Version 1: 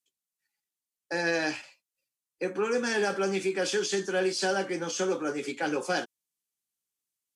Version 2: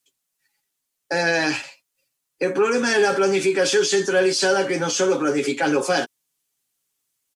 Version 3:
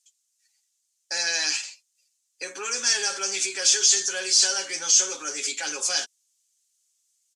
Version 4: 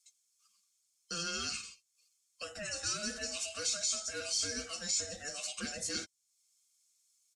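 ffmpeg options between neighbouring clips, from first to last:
ffmpeg -i in.wav -filter_complex "[0:a]aecho=1:1:7.3:0.48,asplit=2[link_01][link_02];[link_02]alimiter=level_in=3dB:limit=-24dB:level=0:latency=1,volume=-3dB,volume=2.5dB[link_03];[link_01][link_03]amix=inputs=2:normalize=0,volume=4dB" out.wav
ffmpeg -i in.wav -filter_complex "[0:a]aderivative,asplit=2[link_01][link_02];[link_02]asoftclip=type=hard:threshold=-25dB,volume=-3.5dB[link_03];[link_01][link_03]amix=inputs=2:normalize=0,lowpass=frequency=6700:width_type=q:width=2.1" out.wav
ffmpeg -i in.wav -filter_complex "[0:a]afftfilt=real='real(if(between(b,1,1008),(2*floor((b-1)/48)+1)*48-b,b),0)':imag='imag(if(between(b,1,1008),(2*floor((b-1)/48)+1)*48-b,b),0)*if(between(b,1,1008),-1,1)':win_size=2048:overlap=0.75,acrossover=split=400[link_01][link_02];[link_02]acompressor=threshold=-51dB:ratio=1.5[link_03];[link_01][link_03]amix=inputs=2:normalize=0,volume=-2.5dB" out.wav

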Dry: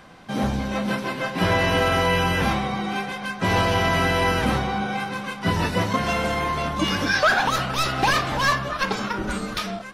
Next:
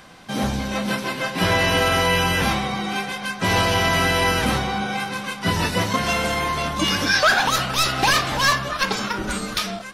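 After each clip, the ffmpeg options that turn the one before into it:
ffmpeg -i in.wav -af "highshelf=frequency=2800:gain=8.5" out.wav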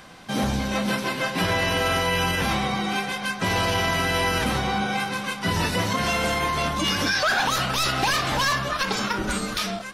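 ffmpeg -i in.wav -af "alimiter=limit=-14dB:level=0:latency=1:release=55" out.wav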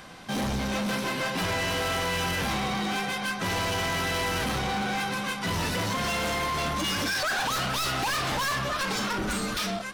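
ffmpeg -i in.wav -af "asoftclip=type=hard:threshold=-26dB" out.wav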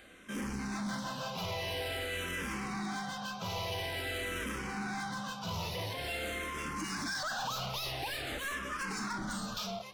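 ffmpeg -i in.wav -filter_complex "[0:a]asplit=2[link_01][link_02];[link_02]afreqshift=-0.48[link_03];[link_01][link_03]amix=inputs=2:normalize=1,volume=-6.5dB" out.wav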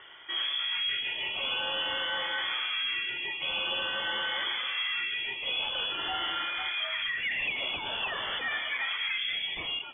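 ffmpeg -i in.wav -af "lowpass=frequency=3000:width_type=q:width=0.5098,lowpass=frequency=3000:width_type=q:width=0.6013,lowpass=frequency=3000:width_type=q:width=0.9,lowpass=frequency=3000:width_type=q:width=2.563,afreqshift=-3500,volume=6dB" out.wav

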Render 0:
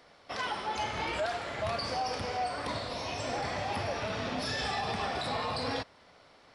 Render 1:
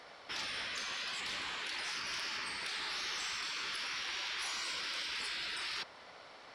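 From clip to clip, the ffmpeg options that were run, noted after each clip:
ffmpeg -i in.wav -filter_complex "[0:a]afftfilt=real='re*lt(hypot(re,im),0.0224)':imag='im*lt(hypot(re,im),0.0224)':win_size=1024:overlap=0.75,asplit=2[link_01][link_02];[link_02]highpass=frequency=720:poles=1,volume=11dB,asoftclip=type=tanh:threshold=-26dB[link_03];[link_01][link_03]amix=inputs=2:normalize=0,lowpass=frequency=5900:poles=1,volume=-6dB" out.wav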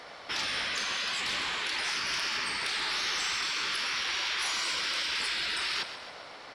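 ffmpeg -i in.wav -af "aecho=1:1:133|266|399|532|665|798:0.266|0.144|0.0776|0.0419|0.0226|0.0122,volume=7.5dB" out.wav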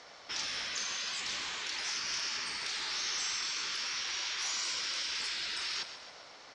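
ffmpeg -i in.wav -af "lowpass=frequency=6500:width_type=q:width=3.6,volume=-8dB" out.wav

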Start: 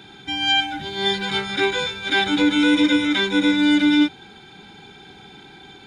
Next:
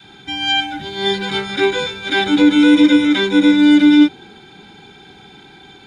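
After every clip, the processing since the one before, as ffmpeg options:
ffmpeg -i in.wav -af "adynamicequalizer=threshold=0.0355:dfrequency=330:dqfactor=0.87:tfrequency=330:tqfactor=0.87:attack=5:release=100:ratio=0.375:range=3:mode=boostabove:tftype=bell,volume=1.5dB" out.wav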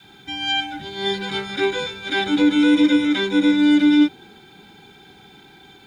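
ffmpeg -i in.wav -af "acrusher=bits=8:mix=0:aa=0.5,volume=-5dB" out.wav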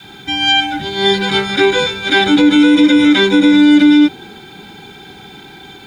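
ffmpeg -i in.wav -af "alimiter=level_in=12dB:limit=-1dB:release=50:level=0:latency=1,volume=-1dB" out.wav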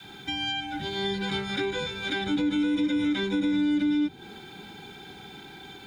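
ffmpeg -i in.wav -filter_complex "[0:a]acrossover=split=200[link_01][link_02];[link_02]acompressor=threshold=-21dB:ratio=4[link_03];[link_01][link_03]amix=inputs=2:normalize=0,volume=-8.5dB" out.wav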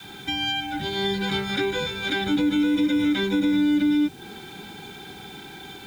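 ffmpeg -i in.wav -af "acrusher=bits=8:mix=0:aa=0.000001,volume=4dB" out.wav

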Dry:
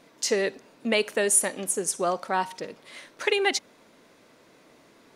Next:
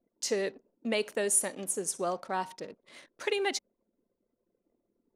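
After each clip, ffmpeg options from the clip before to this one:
ffmpeg -i in.wav -af "anlmdn=0.0251,equalizer=frequency=2000:width=0.59:gain=-3.5,volume=-5dB" out.wav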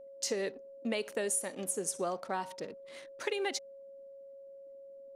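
ffmpeg -i in.wav -af "acompressor=threshold=-30dB:ratio=5,aeval=exprs='val(0)+0.00398*sin(2*PI*550*n/s)':channel_layout=same" out.wav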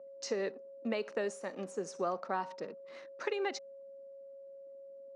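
ffmpeg -i in.wav -af "highpass=frequency=160:width=0.5412,highpass=frequency=160:width=1.3066,equalizer=frequency=280:width_type=q:width=4:gain=-3,equalizer=frequency=1200:width_type=q:width=4:gain=4,equalizer=frequency=2200:width_type=q:width=4:gain=-3,equalizer=frequency=3300:width_type=q:width=4:gain=-10,equalizer=frequency=4600:width_type=q:width=4:gain=-4,lowpass=frequency=5300:width=0.5412,lowpass=frequency=5300:width=1.3066" out.wav

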